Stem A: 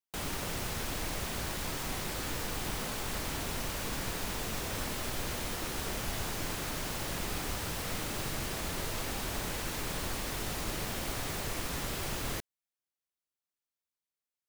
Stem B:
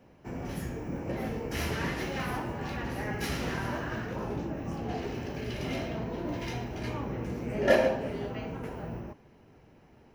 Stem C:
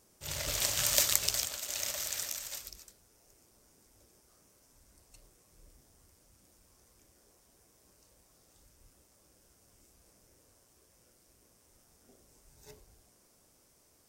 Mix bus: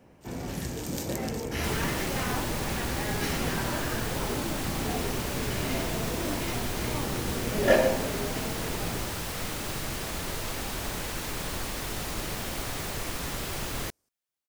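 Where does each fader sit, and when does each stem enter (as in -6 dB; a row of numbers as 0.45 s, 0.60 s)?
+2.5 dB, +1.5 dB, -12.0 dB; 1.50 s, 0.00 s, 0.00 s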